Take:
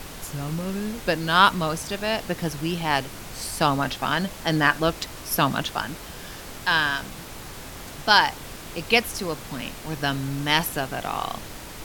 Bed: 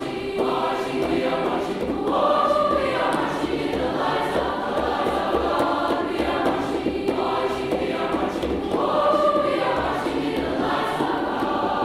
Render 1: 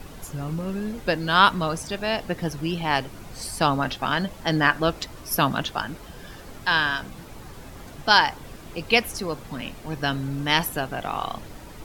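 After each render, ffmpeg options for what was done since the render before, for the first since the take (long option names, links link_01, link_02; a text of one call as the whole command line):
ffmpeg -i in.wav -af "afftdn=noise_reduction=9:noise_floor=-39" out.wav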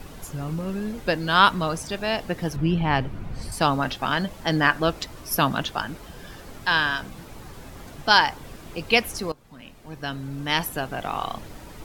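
ffmpeg -i in.wav -filter_complex "[0:a]asettb=1/sr,asplit=3[link_01][link_02][link_03];[link_01]atrim=end=2.564[link_04];[link_02]atrim=start=2.56:end=3.52,asetpts=PTS-STARTPTS,afade=type=in:duration=0.004:curve=qsin,afade=type=out:start_time=0.956:duration=0.004:curve=qsin,bass=frequency=250:gain=9,treble=frequency=4000:gain=-13[link_05];[link_03]atrim=start=3.516[link_06];[link_04][link_05]acrossfade=duration=0.004:curve1=hsin:curve2=qsin[link_07];[link_07][link_06]acrossfade=duration=0.004:curve1=qsin:curve2=hsin,asplit=2[link_08][link_09];[link_08]atrim=end=9.32,asetpts=PTS-STARTPTS,afade=type=out:start_time=9.316:duration=0.004:curve=hsin:silence=0.11885[link_10];[link_09]atrim=start=9.32,asetpts=PTS-STARTPTS,afade=type=in:duration=1.72:silence=0.11885[link_11];[link_10][link_11]concat=n=2:v=0:a=1" out.wav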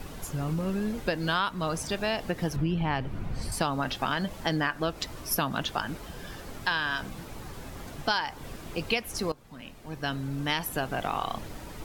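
ffmpeg -i in.wav -af "acompressor=threshold=-24dB:ratio=8" out.wav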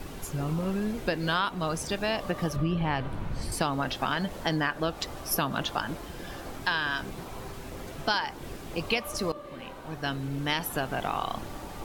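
ffmpeg -i in.wav -i bed.wav -filter_complex "[1:a]volume=-22.5dB[link_01];[0:a][link_01]amix=inputs=2:normalize=0" out.wav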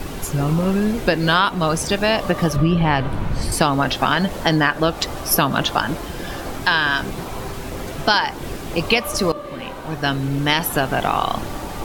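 ffmpeg -i in.wav -af "volume=11dB,alimiter=limit=-2dB:level=0:latency=1" out.wav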